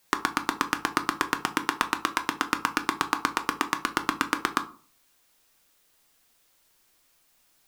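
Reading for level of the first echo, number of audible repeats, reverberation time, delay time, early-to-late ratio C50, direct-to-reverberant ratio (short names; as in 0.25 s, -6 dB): none, none, 0.45 s, none, 15.5 dB, 7.0 dB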